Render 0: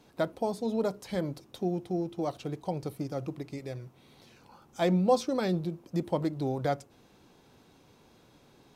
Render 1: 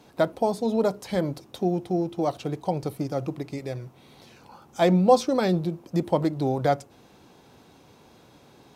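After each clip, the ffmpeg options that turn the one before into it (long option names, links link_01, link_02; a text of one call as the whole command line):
ffmpeg -i in.wav -af "highpass=44,equalizer=frequency=760:width=1.5:gain=2.5,volume=5.5dB" out.wav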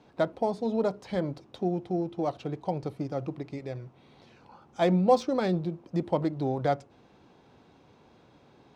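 ffmpeg -i in.wav -af "adynamicsmooth=sensitivity=2.5:basefreq=4600,volume=-4dB" out.wav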